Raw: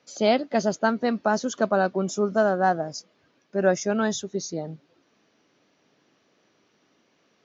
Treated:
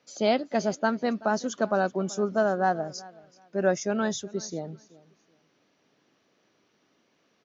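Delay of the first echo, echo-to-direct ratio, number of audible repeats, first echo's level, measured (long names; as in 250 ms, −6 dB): 379 ms, −21.5 dB, 2, −21.5 dB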